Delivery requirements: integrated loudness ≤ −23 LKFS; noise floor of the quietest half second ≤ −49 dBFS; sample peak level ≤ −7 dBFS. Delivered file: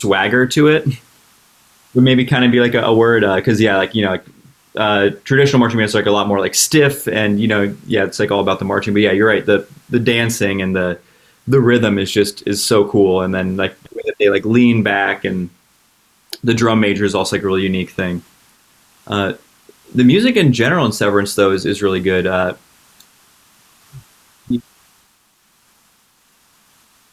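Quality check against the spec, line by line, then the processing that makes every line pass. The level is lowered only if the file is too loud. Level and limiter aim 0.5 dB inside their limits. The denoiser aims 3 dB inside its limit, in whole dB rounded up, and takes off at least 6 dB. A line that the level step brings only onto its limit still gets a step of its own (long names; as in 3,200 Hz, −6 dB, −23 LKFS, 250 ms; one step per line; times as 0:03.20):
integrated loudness −15.0 LKFS: out of spec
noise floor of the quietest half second −57 dBFS: in spec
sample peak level −1.5 dBFS: out of spec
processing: level −8.5 dB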